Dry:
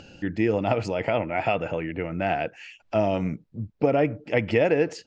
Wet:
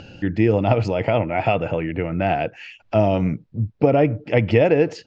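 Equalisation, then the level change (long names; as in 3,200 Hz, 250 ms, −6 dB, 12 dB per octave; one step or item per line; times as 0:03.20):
low-pass filter 4,900 Hz 12 dB per octave
parametric band 110 Hz +6 dB 0.8 octaves
dynamic equaliser 1,700 Hz, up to −4 dB, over −38 dBFS, Q 1.4
+5.0 dB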